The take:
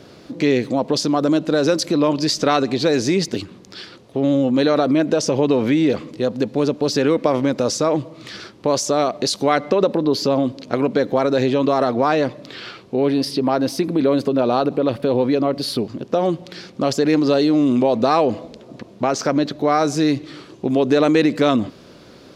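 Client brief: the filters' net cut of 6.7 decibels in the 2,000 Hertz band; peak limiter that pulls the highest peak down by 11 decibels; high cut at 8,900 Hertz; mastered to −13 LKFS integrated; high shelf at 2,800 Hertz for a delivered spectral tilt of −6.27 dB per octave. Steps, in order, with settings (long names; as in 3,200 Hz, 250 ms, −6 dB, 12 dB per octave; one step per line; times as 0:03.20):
low-pass filter 8,900 Hz
parametric band 2,000 Hz −6 dB
high-shelf EQ 2,800 Hz −7.5 dB
level +10.5 dB
brickwall limiter −3 dBFS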